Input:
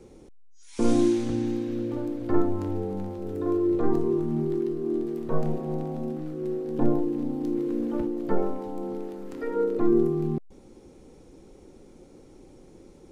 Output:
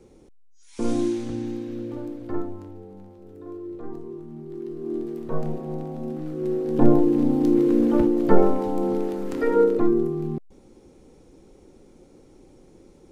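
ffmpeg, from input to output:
-af "volume=8.41,afade=t=out:st=2.06:d=0.67:silence=0.334965,afade=t=in:st=4.45:d=0.52:silence=0.281838,afade=t=in:st=5.97:d=1.31:silence=0.316228,afade=t=out:st=9.53:d=0.42:silence=0.316228"

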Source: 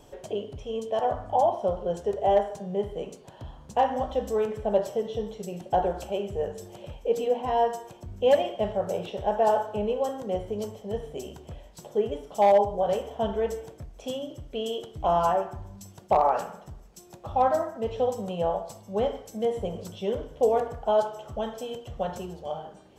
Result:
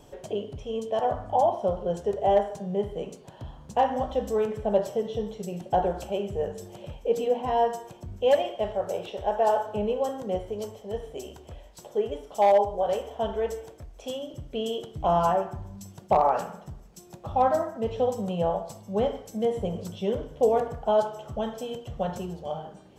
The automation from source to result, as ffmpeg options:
-af "asetnsamples=n=441:p=0,asendcmd='8.17 equalizer g -8;9.66 equalizer g 1.5;10.38 equalizer g -6.5;14.34 equalizer g 5',equalizer=f=160:t=o:w=1.3:g=3"

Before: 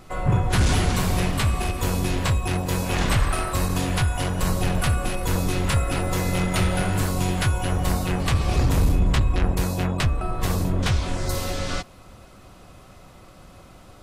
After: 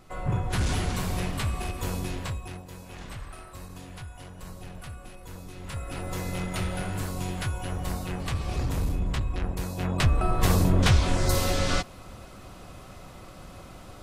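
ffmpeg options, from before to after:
-af "volume=5.01,afade=t=out:st=1.93:d=0.75:silence=0.251189,afade=t=in:st=5.56:d=0.58:silence=0.298538,afade=t=in:st=9.75:d=0.46:silence=0.298538"

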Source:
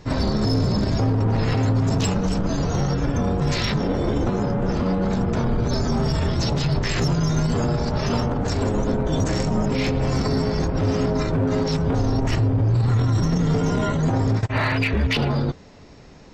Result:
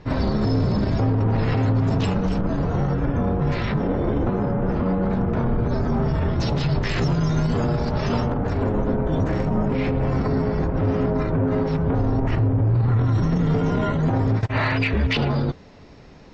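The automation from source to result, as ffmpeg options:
-af "asetnsamples=n=441:p=0,asendcmd='2.41 lowpass f 2100;6.4 lowpass f 4100;8.34 lowpass f 2100;13.05 lowpass f 3200;14.41 lowpass f 5000',lowpass=3400"

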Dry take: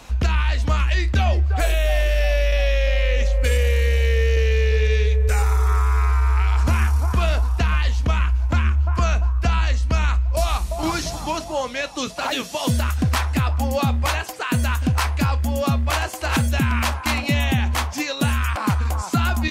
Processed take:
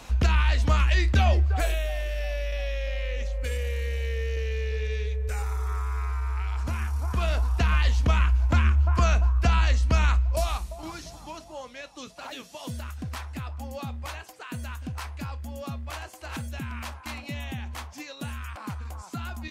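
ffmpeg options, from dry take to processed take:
-af "volume=2.24,afade=t=out:st=1.33:d=0.59:silence=0.354813,afade=t=in:st=6.85:d=1.02:silence=0.354813,afade=t=out:st=10.12:d=0.7:silence=0.223872"

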